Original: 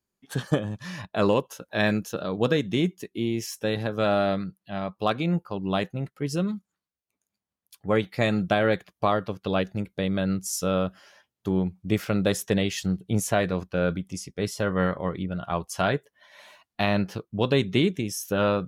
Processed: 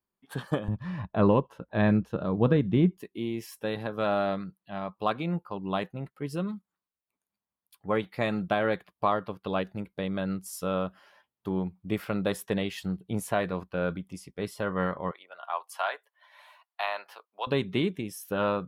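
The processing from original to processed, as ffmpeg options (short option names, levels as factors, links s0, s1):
-filter_complex "[0:a]asettb=1/sr,asplit=3[s0][s1][s2];[s0]atrim=end=0.684[s3];[s1]atrim=start=0.68:end=2.97,asetpts=PTS-STARTPTS,afade=t=in:d=0.004:c=qsin,afade=t=out:st=2.286:d=0.004:c=qsin,aemphasis=mode=reproduction:type=riaa[s4];[s2]atrim=start=2.966[s5];[s3][s4]acrossfade=d=0.004:c1=hsin:c2=qsin[s6];[s6][s5]acrossfade=d=0.004:c1=qsin:c2=hsin,asettb=1/sr,asplit=3[s7][s8][s9];[s7]atrim=end=15.114[s10];[s8]atrim=start=15.11:end=17.47,asetpts=PTS-STARTPTS,afade=t=in:d=0.004:c=qsin,afade=t=out:st=2.356:d=0.004:c=qsin,highpass=f=660:w=0.5412,highpass=f=660:w=1.3066[s11];[s9]atrim=start=17.466[s12];[s10][s11]acrossfade=d=0.004:c1=hsin:c2=qsin[s13];[s13][s12]acrossfade=d=0.004:c1=qsin:c2=hsin,equalizer=f=100:t=o:w=0.67:g=-4,equalizer=f=1000:t=o:w=0.67:g=6,equalizer=f=6300:t=o:w=0.67:g=-11,volume=0.562"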